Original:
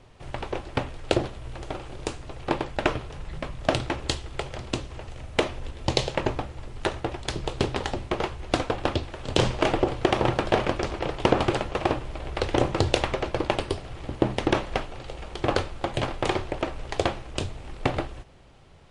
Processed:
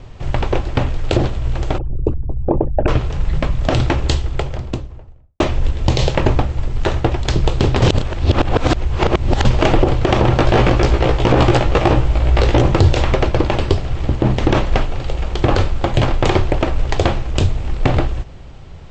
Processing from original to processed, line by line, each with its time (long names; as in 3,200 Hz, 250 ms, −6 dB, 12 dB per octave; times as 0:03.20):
0:01.78–0:02.88: spectral envelope exaggerated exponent 3
0:03.94–0:05.40: fade out and dull
0:07.82–0:09.45: reverse
0:10.37–0:12.62: double-tracking delay 17 ms −3 dB
whole clip: Butterworth low-pass 8,000 Hz 96 dB per octave; low-shelf EQ 170 Hz +10.5 dB; boost into a limiter +11 dB; level −1 dB